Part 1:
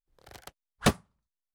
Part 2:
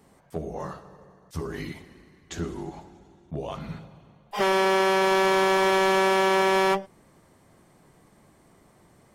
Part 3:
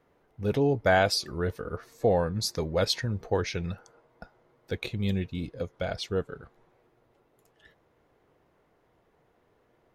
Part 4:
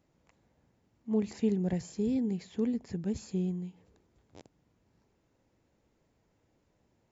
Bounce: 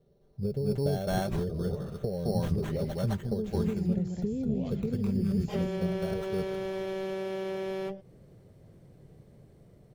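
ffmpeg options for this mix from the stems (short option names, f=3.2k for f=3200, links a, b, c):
-filter_complex "[1:a]dynaudnorm=f=310:g=5:m=5dB,adelay=1150,volume=-10dB[a];[2:a]equalizer=f=2.2k:w=0.77:g=-8.5,aecho=1:1:5.1:0.57,acrusher=samples=9:mix=1:aa=0.000001,volume=-4.5dB,asplit=2[b][c];[c]volume=-5dB[d];[3:a]adelay=2250,volume=-0.5dB,asplit=2[e][f];[f]volume=-11dB[g];[a][b][e]amix=inputs=3:normalize=0,equalizer=f=125:t=o:w=1:g=6,equalizer=f=250:t=o:w=1:g=-4,equalizer=f=500:t=o:w=1:g=9,equalizer=f=1k:t=o:w=1:g=-12,equalizer=f=2k:t=o:w=1:g=-3,equalizer=f=8k:t=o:w=1:g=-6,acompressor=threshold=-33dB:ratio=6,volume=0dB[h];[d][g]amix=inputs=2:normalize=0,aecho=0:1:212:1[i];[h][i]amix=inputs=2:normalize=0,bass=f=250:g=9,treble=f=4k:g=-2"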